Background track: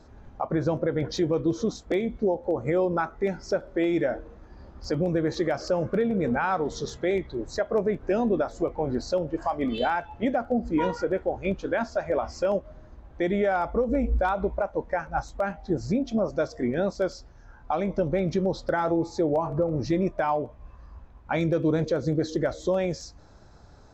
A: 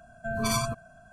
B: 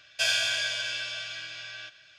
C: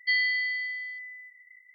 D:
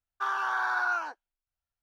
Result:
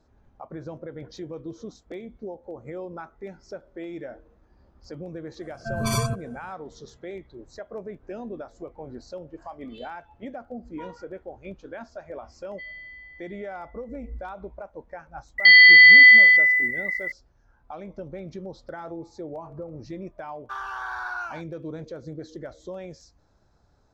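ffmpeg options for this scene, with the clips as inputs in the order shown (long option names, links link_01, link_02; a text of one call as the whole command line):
ffmpeg -i bed.wav -i cue0.wav -i cue1.wav -i cue2.wav -i cue3.wav -filter_complex "[3:a]asplit=2[link_01][link_02];[0:a]volume=-12dB[link_03];[1:a]equalizer=frequency=120:width=1.5:gain=7.5[link_04];[link_01]lowpass=frequency=3100:width=0.5412,lowpass=frequency=3100:width=1.3066[link_05];[link_02]alimiter=level_in=28.5dB:limit=-1dB:release=50:level=0:latency=1[link_06];[link_04]atrim=end=1.12,asetpts=PTS-STARTPTS,afade=type=in:duration=0.004:curve=hsin,afade=type=out:start_time=1.116:duration=0.004:curve=hsin,adelay=238581S[link_07];[link_05]atrim=end=1.74,asetpts=PTS-STARTPTS,volume=-15dB,afade=type=in:duration=0.004:curve=hsin,afade=type=out:start_time=1.736:duration=0.004:curve=hsin,adelay=12510[link_08];[link_06]atrim=end=1.74,asetpts=PTS-STARTPTS,volume=-3.5dB,afade=type=in:duration=0.004:curve=hsin,afade=type=out:start_time=1.736:duration=0.004:curve=hsin,adelay=15380[link_09];[4:a]atrim=end=1.82,asetpts=PTS-STARTPTS,volume=-4dB,afade=type=in:duration=0.004:curve=hsin,afade=type=out:start_time=1.816:duration=0.004:curve=hsin,adelay=20290[link_10];[link_03][link_07][link_08][link_09][link_10]amix=inputs=5:normalize=0" out.wav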